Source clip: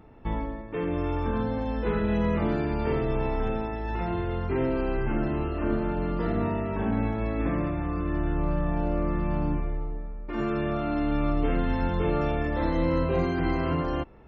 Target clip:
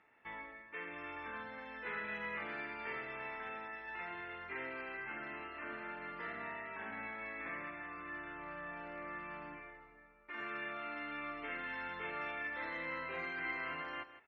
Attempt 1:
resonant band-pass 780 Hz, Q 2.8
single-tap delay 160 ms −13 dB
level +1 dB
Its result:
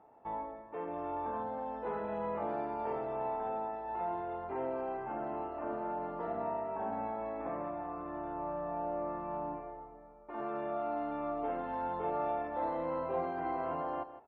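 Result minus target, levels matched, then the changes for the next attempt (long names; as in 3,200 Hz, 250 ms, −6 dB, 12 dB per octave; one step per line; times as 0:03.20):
2,000 Hz band −17.0 dB
change: resonant band-pass 2,000 Hz, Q 2.8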